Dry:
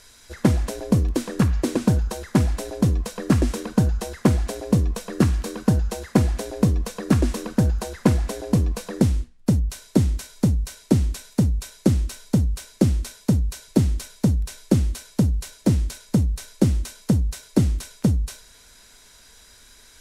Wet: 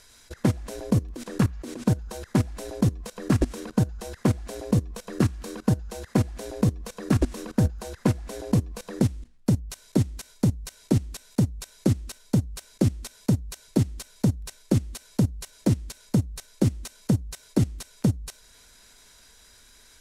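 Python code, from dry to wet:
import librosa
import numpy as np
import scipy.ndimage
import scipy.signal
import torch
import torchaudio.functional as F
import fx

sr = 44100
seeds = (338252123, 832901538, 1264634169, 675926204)

y = fx.level_steps(x, sr, step_db=18)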